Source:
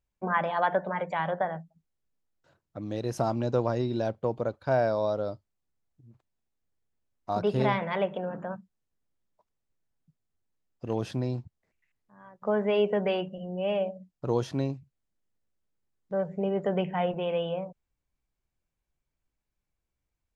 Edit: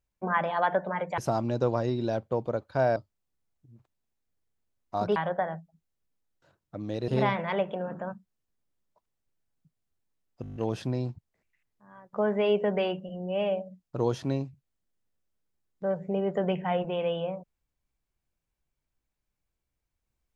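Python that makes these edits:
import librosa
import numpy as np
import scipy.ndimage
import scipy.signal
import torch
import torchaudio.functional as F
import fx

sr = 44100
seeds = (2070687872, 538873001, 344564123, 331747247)

y = fx.edit(x, sr, fx.move(start_s=1.18, length_s=1.92, to_s=7.51),
    fx.cut(start_s=4.88, length_s=0.43),
    fx.stutter(start_s=10.85, slice_s=0.02, count=8), tone=tone)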